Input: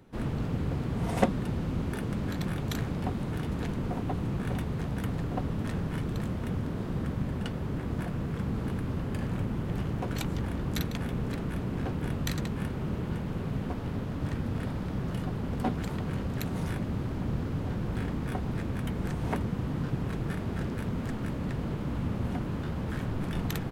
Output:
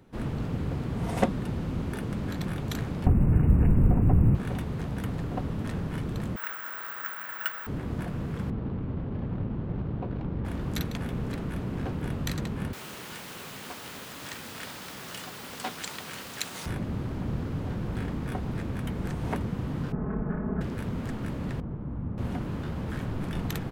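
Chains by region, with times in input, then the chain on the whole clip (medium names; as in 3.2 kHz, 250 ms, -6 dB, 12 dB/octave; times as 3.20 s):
3.06–4.35 s: RIAA curve playback + short-mantissa float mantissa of 6-bit + brick-wall FIR band-stop 2.9–7.3 kHz
6.36–7.67 s: high-pass 1.1 kHz + peaking EQ 1.5 kHz +15 dB 1.1 oct + careless resampling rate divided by 2×, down filtered, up zero stuff
8.50–10.45 s: median filter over 25 samples + distance through air 310 m
12.73–16.66 s: frequency weighting ITU-R 468 + word length cut 8-bit, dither triangular
19.92–20.61 s: low-pass 1.5 kHz 24 dB/octave + comb 4.7 ms, depth 77% + flutter echo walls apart 10 m, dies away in 0.41 s
21.60–22.18 s: Chebyshev low-pass 930 Hz + peaking EQ 660 Hz -7 dB 2.4 oct
whole clip: none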